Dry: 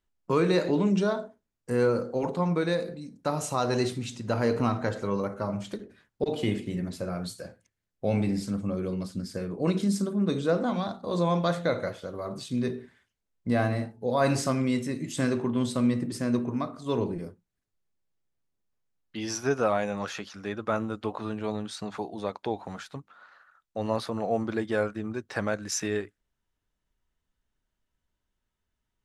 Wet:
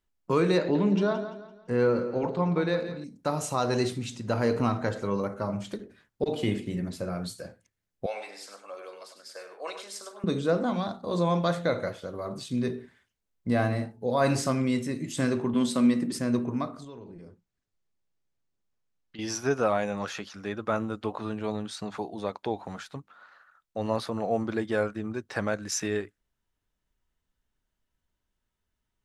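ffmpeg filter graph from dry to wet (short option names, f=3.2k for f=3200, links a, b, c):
-filter_complex "[0:a]asettb=1/sr,asplit=3[a][b][c];[a]atrim=end=0.584[d];[b]atrim=start=0.58:end=3.04,asetpts=PTS-STARTPTS,afade=t=in:d=0.004:c=qsin,afade=t=out:st=2.456:d=0.004:c=qsin,lowpass=4.3k,aecho=1:1:170|340|510|680:0.266|0.0958|0.0345|0.0124,atrim=end_sample=108486[e];[c]atrim=start=3.036[f];[d][e]acrossfade=d=0.004:c1=hsin:c2=qsin[g];[g][f]acrossfade=d=0.004:c1=qsin:c2=hsin,asettb=1/sr,asplit=3[h][i][j];[h]atrim=end=8.064[k];[i]atrim=start=8.06:end=10.24,asetpts=PTS-STARTPTS,afade=t=in:d=0.004:c=qsin,afade=t=out:st=2.176:d=0.004:c=qsin,highpass=f=610:w=0.5412,highpass=f=610:w=1.3066,highshelf=f=7.6k:g=-5,aecho=1:1:99:0.376,atrim=end_sample=96138[l];[j]atrim=start=10.236[m];[k][l]acrossfade=d=0.004:c1=hsin:c2=qsin[n];[n][m]acrossfade=d=0.004:c1=qsin:c2=hsin,asettb=1/sr,asplit=3[o][p][q];[o]atrim=end=15.544[r];[p]atrim=start=15.54:end=16.19,asetpts=PTS-STARTPTS,afade=t=in:d=0.004:c=qsin,afade=t=out:st=0.646:d=0.004:c=qsin,highpass=f=200:t=q:w=2,tiltshelf=f=630:g=-3.5[s];[q]atrim=start=16.186[t];[r][s]acrossfade=d=0.004:c1=hsin:c2=qsin[u];[u][t]acrossfade=d=0.004:c1=qsin:c2=hsin,asettb=1/sr,asplit=3[v][w][x];[v]atrim=end=16.844[y];[w]atrim=start=16.84:end=19.19,asetpts=PTS-STARTPTS,afade=t=in:d=0.004:c=qsin,afade=t=out:st=2.346:d=0.004:c=qsin,lowpass=f=8k:w=0.5412,lowpass=f=8k:w=1.3066,acompressor=threshold=-44dB:ratio=4:attack=3.2:release=140:knee=1:detection=peak[z];[x]atrim=start=19.186[aa];[y][z]acrossfade=d=0.004:c1=hsin:c2=qsin[ab];[ab][aa]acrossfade=d=0.004:c1=qsin:c2=hsin"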